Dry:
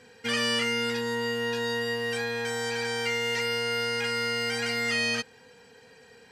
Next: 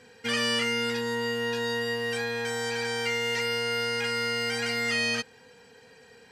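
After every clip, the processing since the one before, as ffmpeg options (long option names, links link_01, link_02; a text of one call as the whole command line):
ffmpeg -i in.wav -af anull out.wav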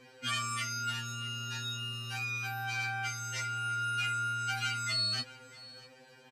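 ffmpeg -i in.wav -af "aecho=1:1:647:0.106,afftfilt=real='re*2.45*eq(mod(b,6),0)':imag='im*2.45*eq(mod(b,6),0)':win_size=2048:overlap=0.75" out.wav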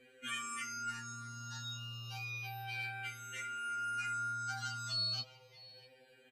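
ffmpeg -i in.wav -filter_complex "[0:a]bandreject=frequency=107.7:width_type=h:width=4,bandreject=frequency=215.4:width_type=h:width=4,bandreject=frequency=323.1:width_type=h:width=4,bandreject=frequency=430.8:width_type=h:width=4,bandreject=frequency=538.5:width_type=h:width=4,bandreject=frequency=646.2:width_type=h:width=4,bandreject=frequency=753.9:width_type=h:width=4,bandreject=frequency=861.6:width_type=h:width=4,bandreject=frequency=969.3:width_type=h:width=4,bandreject=frequency=1077:width_type=h:width=4,bandreject=frequency=1184.7:width_type=h:width=4,bandreject=frequency=1292.4:width_type=h:width=4,bandreject=frequency=1400.1:width_type=h:width=4,bandreject=frequency=1507.8:width_type=h:width=4,bandreject=frequency=1615.5:width_type=h:width=4,bandreject=frequency=1723.2:width_type=h:width=4,bandreject=frequency=1830.9:width_type=h:width=4,bandreject=frequency=1938.6:width_type=h:width=4,bandreject=frequency=2046.3:width_type=h:width=4,bandreject=frequency=2154:width_type=h:width=4,bandreject=frequency=2261.7:width_type=h:width=4,bandreject=frequency=2369.4:width_type=h:width=4,bandreject=frequency=2477.1:width_type=h:width=4,bandreject=frequency=2584.8:width_type=h:width=4,bandreject=frequency=2692.5:width_type=h:width=4,bandreject=frequency=2800.2:width_type=h:width=4,bandreject=frequency=2907.9:width_type=h:width=4,bandreject=frequency=3015.6:width_type=h:width=4,bandreject=frequency=3123.3:width_type=h:width=4,bandreject=frequency=3231:width_type=h:width=4,bandreject=frequency=3338.7:width_type=h:width=4,bandreject=frequency=3446.4:width_type=h:width=4,bandreject=frequency=3554.1:width_type=h:width=4,bandreject=frequency=3661.8:width_type=h:width=4,bandreject=frequency=3769.5:width_type=h:width=4,bandreject=frequency=3877.2:width_type=h:width=4,bandreject=frequency=3984.9:width_type=h:width=4,bandreject=frequency=4092.6:width_type=h:width=4,bandreject=frequency=4200.3:width_type=h:width=4,bandreject=frequency=4308:width_type=h:width=4,asplit=2[link_01][link_02];[link_02]afreqshift=-0.32[link_03];[link_01][link_03]amix=inputs=2:normalize=1,volume=-4dB" out.wav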